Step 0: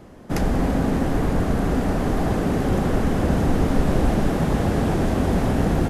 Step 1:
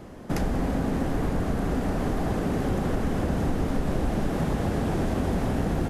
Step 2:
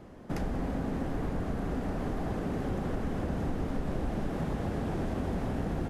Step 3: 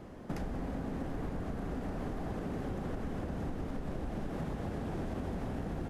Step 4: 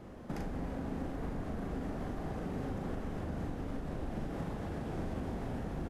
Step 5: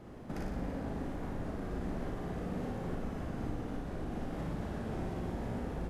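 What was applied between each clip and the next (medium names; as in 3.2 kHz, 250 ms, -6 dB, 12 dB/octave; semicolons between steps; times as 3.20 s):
compression 2.5:1, threshold -27 dBFS, peak gain reduction 10 dB; trim +1.5 dB
treble shelf 5.1 kHz -6.5 dB; trim -6.5 dB
compression 5:1, threshold -35 dBFS, peak gain reduction 8.5 dB; trim +1 dB
doubling 41 ms -5 dB; trim -2 dB
flutter echo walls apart 9.9 m, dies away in 0.8 s; trim -1.5 dB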